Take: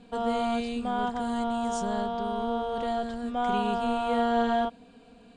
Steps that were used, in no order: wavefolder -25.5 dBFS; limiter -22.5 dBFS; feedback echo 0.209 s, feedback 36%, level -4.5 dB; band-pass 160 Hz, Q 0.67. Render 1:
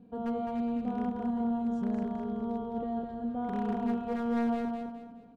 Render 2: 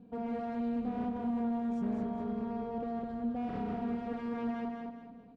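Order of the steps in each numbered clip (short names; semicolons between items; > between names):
band-pass > limiter > wavefolder > feedback echo; wavefolder > feedback echo > limiter > band-pass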